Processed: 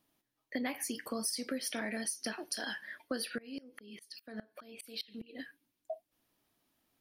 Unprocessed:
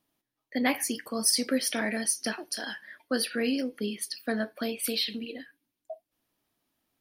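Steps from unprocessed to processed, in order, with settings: compression 6:1, threshold -35 dBFS, peak gain reduction 14.5 dB; 3.38–5.39 s: sawtooth tremolo in dB swelling 4.9 Hz, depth 26 dB; trim +1 dB

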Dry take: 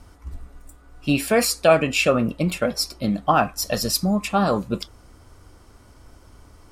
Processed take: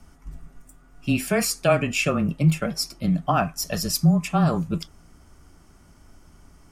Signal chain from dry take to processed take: frequency shift -20 Hz; graphic EQ with 31 bands 160 Hz +10 dB, 500 Hz -8 dB, 1 kHz -4 dB, 4 kHz -7 dB, 6.3 kHz +3 dB; trim -2.5 dB

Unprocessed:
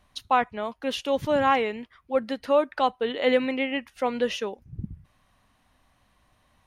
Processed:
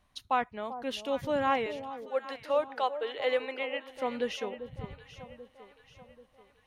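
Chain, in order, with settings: 1.66–3.89 s: high-pass 380 Hz 24 dB/octave; echo whose repeats swap between lows and highs 393 ms, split 930 Hz, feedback 67%, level -10.5 dB; trim -6.5 dB

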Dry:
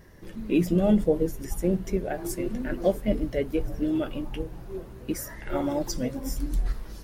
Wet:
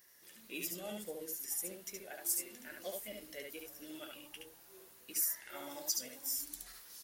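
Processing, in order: differentiator; delay 71 ms -3.5 dB; trim +1 dB

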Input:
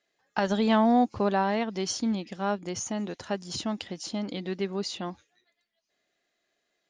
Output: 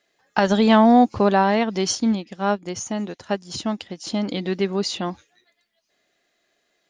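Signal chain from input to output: 1.95–4.07 s: upward expansion 1.5:1, over -46 dBFS; trim +8 dB

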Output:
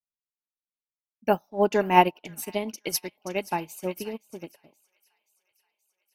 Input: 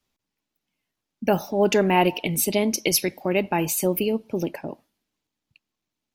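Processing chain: dynamic bell 1 kHz, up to +5 dB, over -36 dBFS, Q 1.3; feedback echo behind a high-pass 527 ms, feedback 67%, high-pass 1.6 kHz, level -8 dB; upward expansion 2.5:1, over -34 dBFS; trim +1.5 dB

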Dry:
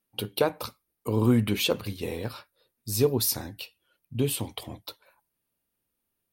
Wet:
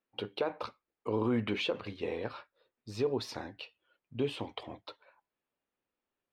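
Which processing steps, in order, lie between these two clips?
tone controls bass -12 dB, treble -10 dB; peak limiter -21 dBFS, peak gain reduction 9 dB; distance through air 140 m

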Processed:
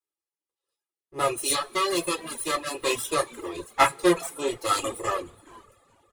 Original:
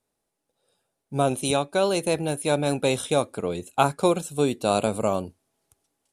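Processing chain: comb filter that takes the minimum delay 2.4 ms; wow and flutter 22 cents; comb of notches 760 Hz; frequency-shifting echo 421 ms, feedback 38%, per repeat -150 Hz, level -17.5 dB; on a send at -1 dB: reverberation, pre-delay 3 ms; on the sum: reverb removal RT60 0.9 s; bass shelf 480 Hz -10 dB; three bands expanded up and down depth 40%; trim +3.5 dB

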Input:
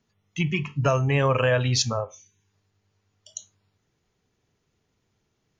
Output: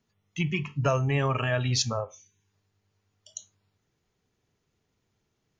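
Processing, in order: 1.10–1.71 s: comb of notches 510 Hz; trim -3 dB

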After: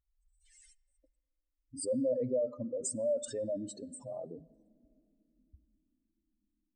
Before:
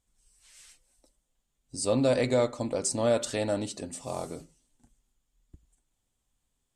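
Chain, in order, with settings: spectral contrast enhancement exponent 3.2; peaking EQ 1.8 kHz +9.5 dB 0.24 oct; on a send: reverberation, pre-delay 3 ms, DRR 22 dB; on the sum: trim -6 dB

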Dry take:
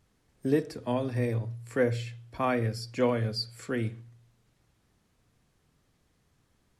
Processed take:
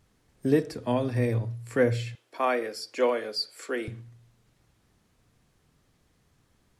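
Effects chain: 2.15–3.88 s: high-pass 320 Hz 24 dB/octave; trim +3 dB

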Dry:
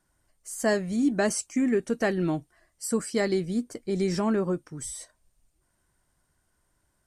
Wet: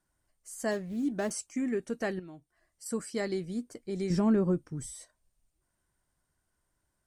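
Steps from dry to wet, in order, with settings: 0.71–1.31 s: median filter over 15 samples; 2.19–2.86 s: compression 3:1, threshold -42 dBFS, peak gain reduction 13.5 dB; 4.10–4.86 s: bass shelf 360 Hz +11.5 dB; trim -7 dB

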